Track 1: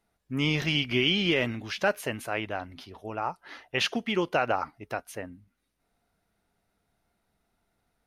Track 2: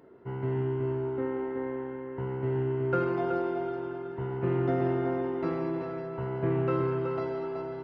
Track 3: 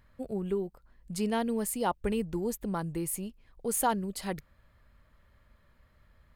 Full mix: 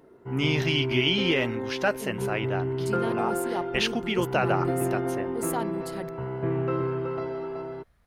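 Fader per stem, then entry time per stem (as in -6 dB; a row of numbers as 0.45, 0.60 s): +0.5, +0.5, -4.0 dB; 0.00, 0.00, 1.70 s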